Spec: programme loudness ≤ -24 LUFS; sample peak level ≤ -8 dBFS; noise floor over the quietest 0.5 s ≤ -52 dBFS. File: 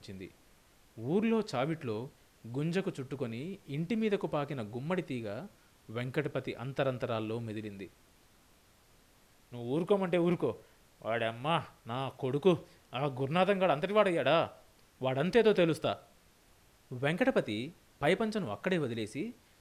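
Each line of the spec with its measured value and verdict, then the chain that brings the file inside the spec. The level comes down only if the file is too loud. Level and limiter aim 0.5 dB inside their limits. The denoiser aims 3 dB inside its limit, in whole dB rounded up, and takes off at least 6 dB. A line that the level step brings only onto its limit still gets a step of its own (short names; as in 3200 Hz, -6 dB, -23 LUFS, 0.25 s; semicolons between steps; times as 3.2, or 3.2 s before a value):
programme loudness -33.0 LUFS: OK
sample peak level -13.0 dBFS: OK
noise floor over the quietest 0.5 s -64 dBFS: OK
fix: none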